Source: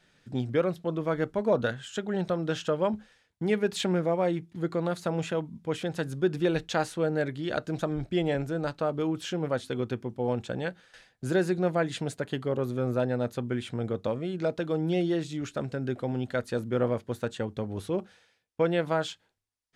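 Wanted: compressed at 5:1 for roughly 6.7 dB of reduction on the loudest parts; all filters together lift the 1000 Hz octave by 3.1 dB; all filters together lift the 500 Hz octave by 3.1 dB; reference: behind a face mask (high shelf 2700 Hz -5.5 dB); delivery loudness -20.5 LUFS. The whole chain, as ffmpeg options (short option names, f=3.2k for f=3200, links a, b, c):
-af "equalizer=f=500:t=o:g=3,equalizer=f=1k:t=o:g=4,acompressor=threshold=-25dB:ratio=5,highshelf=f=2.7k:g=-5.5,volume=11dB"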